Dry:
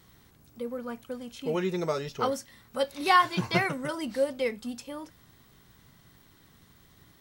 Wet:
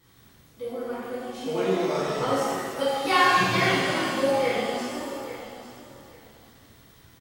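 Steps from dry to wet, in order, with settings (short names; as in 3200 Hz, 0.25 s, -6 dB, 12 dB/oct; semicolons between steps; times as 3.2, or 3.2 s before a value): feedback echo 0.838 s, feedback 17%, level -14 dB; shimmer reverb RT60 1.7 s, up +7 st, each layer -8 dB, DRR -10.5 dB; gain -6.5 dB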